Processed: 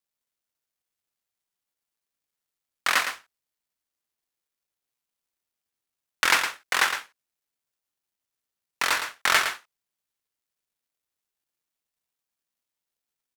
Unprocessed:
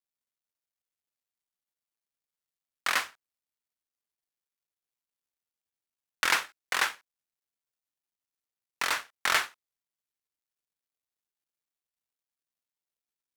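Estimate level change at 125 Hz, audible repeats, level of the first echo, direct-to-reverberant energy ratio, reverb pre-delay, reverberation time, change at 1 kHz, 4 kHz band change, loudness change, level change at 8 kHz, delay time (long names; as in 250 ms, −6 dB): can't be measured, 1, −8.0 dB, no reverb audible, no reverb audible, no reverb audible, +5.0 dB, +5.0 dB, +4.5 dB, +5.0 dB, 112 ms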